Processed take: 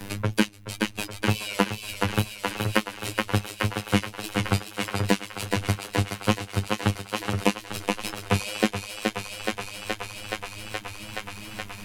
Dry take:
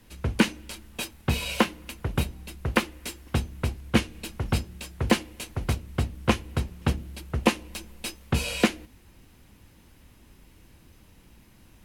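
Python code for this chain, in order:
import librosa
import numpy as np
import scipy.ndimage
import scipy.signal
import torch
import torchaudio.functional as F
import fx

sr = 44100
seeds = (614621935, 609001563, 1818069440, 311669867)

p1 = fx.dereverb_blind(x, sr, rt60_s=0.89)
p2 = fx.level_steps(p1, sr, step_db=23)
p3 = p1 + F.gain(torch.from_numpy(p2), 0.5).numpy()
p4 = fx.robotise(p3, sr, hz=103.0)
p5 = fx.wow_flutter(p4, sr, seeds[0], rate_hz=2.1, depth_cents=65.0)
p6 = p5 + fx.echo_thinned(p5, sr, ms=423, feedback_pct=72, hz=300.0, wet_db=-5.5, dry=0)
y = fx.band_squash(p6, sr, depth_pct=70)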